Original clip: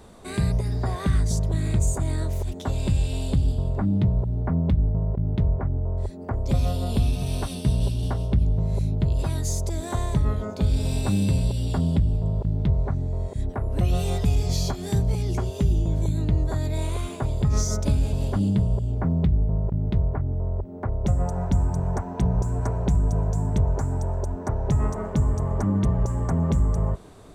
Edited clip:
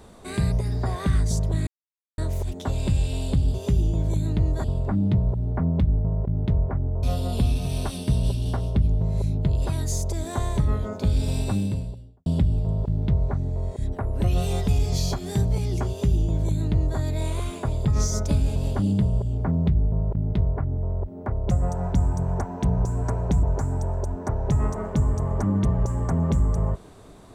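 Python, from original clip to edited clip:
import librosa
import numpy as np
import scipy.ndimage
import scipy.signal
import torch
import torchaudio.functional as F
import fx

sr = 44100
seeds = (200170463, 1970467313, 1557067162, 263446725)

y = fx.studio_fade_out(x, sr, start_s=10.85, length_s=0.98)
y = fx.edit(y, sr, fx.silence(start_s=1.67, length_s=0.51),
    fx.cut(start_s=5.93, length_s=0.67),
    fx.duplicate(start_s=15.46, length_s=1.1, to_s=3.54),
    fx.cut(start_s=23.0, length_s=0.63), tone=tone)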